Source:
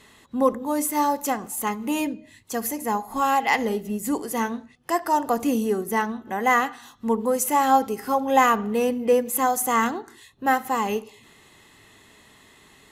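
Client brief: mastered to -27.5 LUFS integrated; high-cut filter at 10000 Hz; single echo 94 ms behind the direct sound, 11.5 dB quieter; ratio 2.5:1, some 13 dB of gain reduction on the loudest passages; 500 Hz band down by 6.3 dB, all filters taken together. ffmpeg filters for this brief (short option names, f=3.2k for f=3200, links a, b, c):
-af "lowpass=10k,equalizer=f=500:t=o:g=-7,acompressor=threshold=-35dB:ratio=2.5,aecho=1:1:94:0.266,volume=7dB"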